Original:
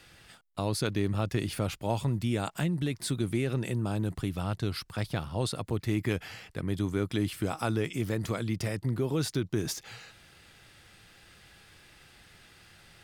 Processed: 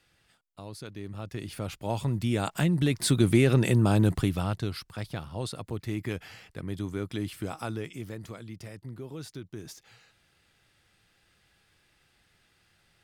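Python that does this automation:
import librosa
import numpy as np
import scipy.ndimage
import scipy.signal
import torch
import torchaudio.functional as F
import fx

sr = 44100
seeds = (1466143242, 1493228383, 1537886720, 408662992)

y = fx.gain(x, sr, db=fx.line((0.92, -12.0), (1.94, -0.5), (3.28, 8.5), (4.1, 8.5), (4.86, -3.5), (7.55, -3.5), (8.43, -11.0)))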